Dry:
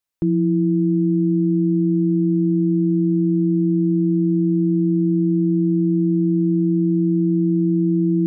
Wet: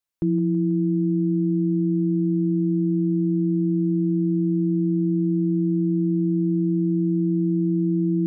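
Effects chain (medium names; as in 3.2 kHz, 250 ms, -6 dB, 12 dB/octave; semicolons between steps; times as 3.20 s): thinning echo 163 ms, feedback 78%, level -11 dB; trim -3 dB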